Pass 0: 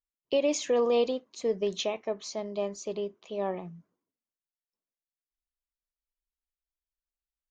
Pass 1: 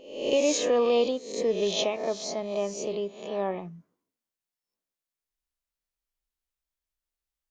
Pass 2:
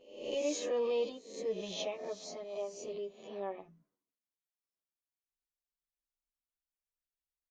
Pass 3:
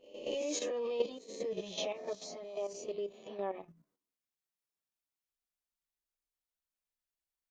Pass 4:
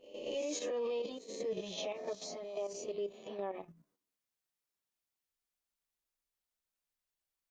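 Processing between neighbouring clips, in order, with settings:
peak hold with a rise ahead of every peak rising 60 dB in 0.66 s; level +1.5 dB
barber-pole flanger 9.8 ms −0.33 Hz; level −8.5 dB
output level in coarse steps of 10 dB; level +4.5 dB
brickwall limiter −31.5 dBFS, peak gain reduction 10.5 dB; level +1.5 dB

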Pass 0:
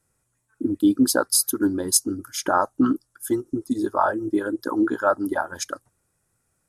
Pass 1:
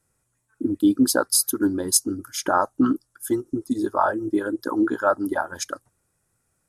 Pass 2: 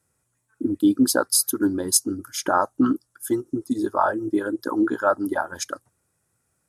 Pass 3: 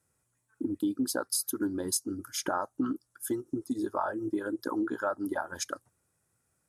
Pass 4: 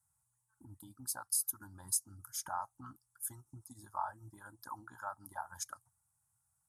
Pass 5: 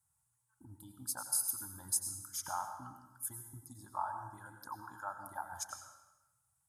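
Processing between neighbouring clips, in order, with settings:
no processing that can be heard
high-pass filter 58 Hz
downward compressor 3 to 1, threshold −25 dBFS, peak gain reduction 9.5 dB; level −4 dB
drawn EQ curve 130 Hz 0 dB, 280 Hz −22 dB, 450 Hz −30 dB, 850 Hz +3 dB, 2,600 Hz −15 dB, 8,700 Hz +4 dB; level −5.5 dB
convolution reverb RT60 1.0 s, pre-delay 83 ms, DRR 6 dB

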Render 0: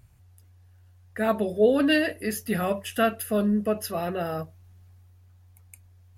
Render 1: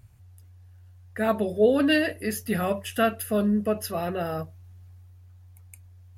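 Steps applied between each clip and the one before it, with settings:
parametric band 100 Hz +6.5 dB 0.45 octaves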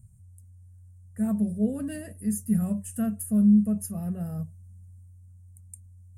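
drawn EQ curve 110 Hz 0 dB, 210 Hz +6 dB, 310 Hz −15 dB, 620 Hz −16 dB, 1,400 Hz −20 dB, 2,500 Hz −23 dB, 3,900 Hz −29 dB, 8,700 Hz +9 dB, 12,000 Hz −6 dB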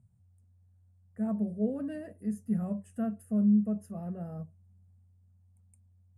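resonant band-pass 580 Hz, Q 0.66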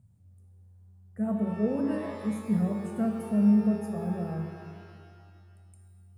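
reverb with rising layers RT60 1.9 s, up +12 semitones, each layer −8 dB, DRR 4 dB
level +3.5 dB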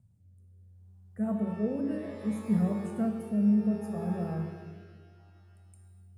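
rotating-speaker cabinet horn 0.65 Hz

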